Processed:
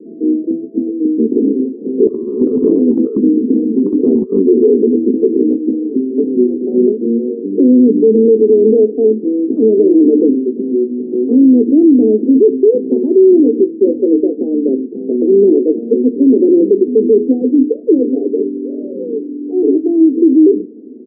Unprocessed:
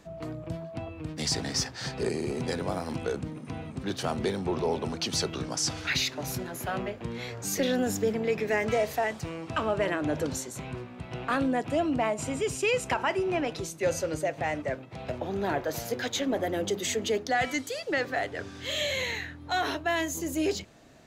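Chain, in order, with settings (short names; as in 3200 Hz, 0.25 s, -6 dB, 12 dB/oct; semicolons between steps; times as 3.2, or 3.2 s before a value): Chebyshev band-pass 220–450 Hz, order 4; notches 60/120/180/240/300 Hz; 2.07–4.42 negative-ratio compressor -39 dBFS, ratio -0.5; doubler 16 ms -13 dB; maximiser +28.5 dB; gain -1 dB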